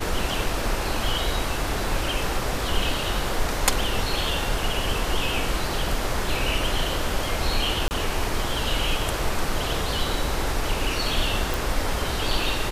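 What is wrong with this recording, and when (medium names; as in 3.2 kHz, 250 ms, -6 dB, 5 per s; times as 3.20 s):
7.88–7.91 s: dropout 29 ms
11.54 s: pop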